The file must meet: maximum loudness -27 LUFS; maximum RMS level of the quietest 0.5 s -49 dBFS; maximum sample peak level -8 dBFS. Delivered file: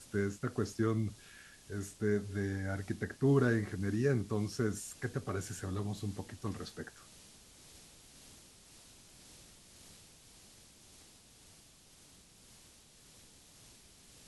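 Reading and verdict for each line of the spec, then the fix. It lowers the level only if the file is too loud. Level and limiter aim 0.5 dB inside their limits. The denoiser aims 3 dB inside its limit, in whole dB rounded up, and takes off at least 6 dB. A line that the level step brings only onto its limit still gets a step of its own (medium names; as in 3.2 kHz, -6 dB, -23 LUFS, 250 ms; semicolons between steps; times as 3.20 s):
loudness -35.5 LUFS: pass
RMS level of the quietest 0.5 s -61 dBFS: pass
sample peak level -17.0 dBFS: pass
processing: none needed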